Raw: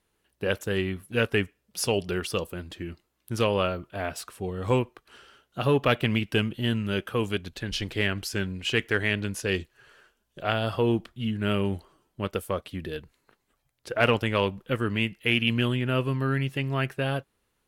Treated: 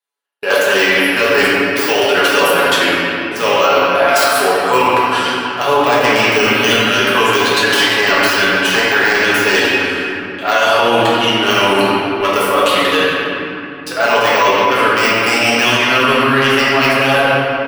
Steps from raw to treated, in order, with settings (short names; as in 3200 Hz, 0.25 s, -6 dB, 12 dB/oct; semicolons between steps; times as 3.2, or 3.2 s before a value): tracing distortion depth 0.17 ms; de-esser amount 75%; HPF 720 Hz 12 dB/oct; gate -55 dBFS, range -41 dB; bell 2300 Hz -3 dB 0.78 oct; comb 7.1 ms, depth 62%; reverse; compressor 6:1, threshold -43 dBFS, peak gain reduction 19.5 dB; reverse; flange 1 Hz, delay 7.3 ms, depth 5.6 ms, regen +87%; reverb RT60 2.9 s, pre-delay 5 ms, DRR -7 dB; maximiser +33.5 dB; gain -1 dB